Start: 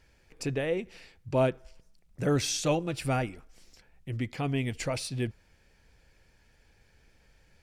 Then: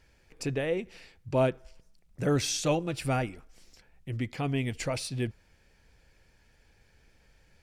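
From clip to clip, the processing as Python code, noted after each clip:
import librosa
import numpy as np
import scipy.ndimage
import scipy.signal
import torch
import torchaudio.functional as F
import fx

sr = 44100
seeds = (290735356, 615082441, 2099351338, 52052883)

y = x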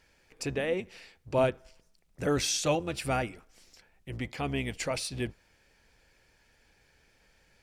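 y = fx.octave_divider(x, sr, octaves=1, level_db=-5.0)
y = fx.low_shelf(y, sr, hz=240.0, db=-9.5)
y = F.gain(torch.from_numpy(y), 1.5).numpy()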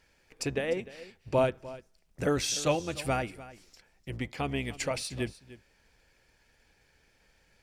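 y = fx.transient(x, sr, attack_db=4, sustain_db=0)
y = y + 10.0 ** (-17.5 / 20.0) * np.pad(y, (int(300 * sr / 1000.0), 0))[:len(y)]
y = F.gain(torch.from_numpy(y), -1.5).numpy()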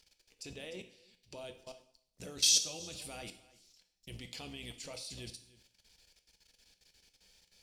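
y = fx.high_shelf_res(x, sr, hz=2600.0, db=12.0, q=1.5)
y = fx.level_steps(y, sr, step_db=20)
y = fx.rev_double_slope(y, sr, seeds[0], early_s=0.56, late_s=1.7, knee_db=-28, drr_db=7.0)
y = F.gain(torch.from_numpy(y), -6.0).numpy()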